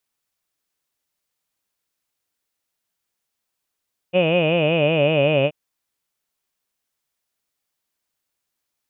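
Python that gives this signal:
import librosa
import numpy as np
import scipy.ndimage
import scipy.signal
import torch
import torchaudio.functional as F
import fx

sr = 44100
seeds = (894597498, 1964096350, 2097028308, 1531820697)

y = fx.formant_vowel(sr, seeds[0], length_s=1.38, hz=173.0, glide_st=-3.5, vibrato_hz=5.3, vibrato_st=1.25, f1_hz=570.0, f2_hz=2500.0, f3_hz=2900.0)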